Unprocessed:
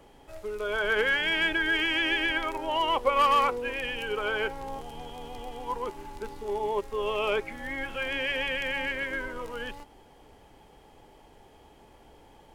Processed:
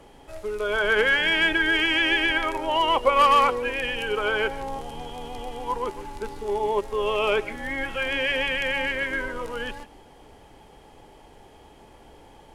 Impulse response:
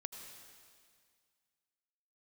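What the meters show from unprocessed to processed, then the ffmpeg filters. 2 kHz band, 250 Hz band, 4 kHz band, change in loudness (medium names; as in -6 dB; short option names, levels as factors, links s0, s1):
+5.0 dB, +5.0 dB, +5.0 dB, +5.0 dB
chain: -filter_complex "[1:a]atrim=start_sample=2205,atrim=end_sample=3528,asetrate=22932,aresample=44100[s0];[0:a][s0]afir=irnorm=-1:irlink=0,volume=1.88"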